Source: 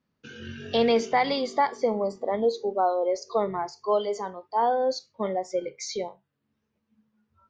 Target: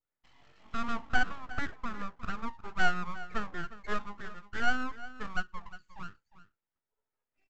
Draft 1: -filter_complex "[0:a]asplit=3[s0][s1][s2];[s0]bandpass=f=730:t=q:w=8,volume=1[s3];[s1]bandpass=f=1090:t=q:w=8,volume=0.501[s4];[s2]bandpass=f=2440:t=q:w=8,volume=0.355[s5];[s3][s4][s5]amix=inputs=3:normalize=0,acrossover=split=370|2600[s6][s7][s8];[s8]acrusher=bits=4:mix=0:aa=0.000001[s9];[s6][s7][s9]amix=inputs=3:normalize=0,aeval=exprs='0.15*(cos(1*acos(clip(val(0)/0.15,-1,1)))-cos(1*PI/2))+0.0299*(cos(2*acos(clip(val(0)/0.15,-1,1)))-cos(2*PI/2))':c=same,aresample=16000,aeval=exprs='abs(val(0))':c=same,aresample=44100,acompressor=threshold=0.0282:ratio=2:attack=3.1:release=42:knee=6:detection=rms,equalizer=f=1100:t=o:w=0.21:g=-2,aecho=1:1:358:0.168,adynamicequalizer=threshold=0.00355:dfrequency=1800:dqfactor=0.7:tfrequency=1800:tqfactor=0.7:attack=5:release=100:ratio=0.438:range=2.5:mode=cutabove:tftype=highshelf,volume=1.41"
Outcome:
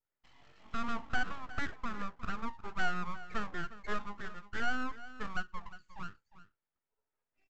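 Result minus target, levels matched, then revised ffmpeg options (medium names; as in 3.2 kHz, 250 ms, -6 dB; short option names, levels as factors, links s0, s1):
compression: peak gain reduction +7 dB
-filter_complex "[0:a]asplit=3[s0][s1][s2];[s0]bandpass=f=730:t=q:w=8,volume=1[s3];[s1]bandpass=f=1090:t=q:w=8,volume=0.501[s4];[s2]bandpass=f=2440:t=q:w=8,volume=0.355[s5];[s3][s4][s5]amix=inputs=3:normalize=0,acrossover=split=370|2600[s6][s7][s8];[s8]acrusher=bits=4:mix=0:aa=0.000001[s9];[s6][s7][s9]amix=inputs=3:normalize=0,aeval=exprs='0.15*(cos(1*acos(clip(val(0)/0.15,-1,1)))-cos(1*PI/2))+0.0299*(cos(2*acos(clip(val(0)/0.15,-1,1)))-cos(2*PI/2))':c=same,aresample=16000,aeval=exprs='abs(val(0))':c=same,aresample=44100,equalizer=f=1100:t=o:w=0.21:g=-2,aecho=1:1:358:0.168,adynamicequalizer=threshold=0.00355:dfrequency=1800:dqfactor=0.7:tfrequency=1800:tqfactor=0.7:attack=5:release=100:ratio=0.438:range=2.5:mode=cutabove:tftype=highshelf,volume=1.41"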